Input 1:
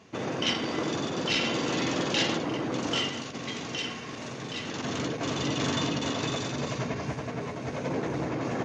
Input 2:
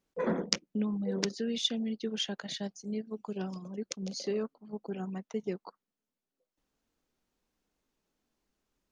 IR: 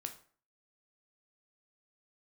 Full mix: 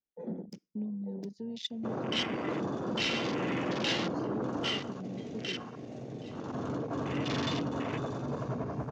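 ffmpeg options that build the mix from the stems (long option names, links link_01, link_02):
-filter_complex "[0:a]adelay=1700,volume=-4.5dB,asplit=2[link_01][link_02];[link_02]volume=-8dB[link_03];[1:a]acrossover=split=310|3000[link_04][link_05][link_06];[link_05]acompressor=threshold=-55dB:ratio=1.5[link_07];[link_04][link_07][link_06]amix=inputs=3:normalize=0,asoftclip=type=tanh:threshold=-18dB,volume=-5dB,asplit=2[link_08][link_09];[link_09]volume=-11.5dB[link_10];[2:a]atrim=start_sample=2205[link_11];[link_03][link_10]amix=inputs=2:normalize=0[link_12];[link_12][link_11]afir=irnorm=-1:irlink=0[link_13];[link_01][link_08][link_13]amix=inputs=3:normalize=0,asoftclip=type=tanh:threshold=-22dB,afwtdn=0.0126"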